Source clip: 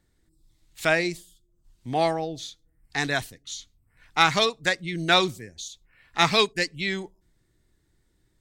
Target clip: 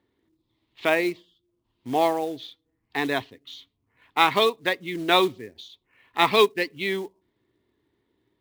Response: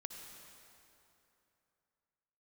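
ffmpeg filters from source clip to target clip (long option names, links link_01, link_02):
-af "highpass=130,equalizer=frequency=160:width_type=q:width=4:gain=-9,equalizer=frequency=270:width_type=q:width=4:gain=5,equalizer=frequency=410:width_type=q:width=4:gain=7,equalizer=frequency=1000:width_type=q:width=4:gain=7,equalizer=frequency=1500:width_type=q:width=4:gain=-6,equalizer=frequency=3200:width_type=q:width=4:gain=3,lowpass=frequency=3600:width=0.5412,lowpass=frequency=3600:width=1.3066,acrusher=bits=5:mode=log:mix=0:aa=0.000001"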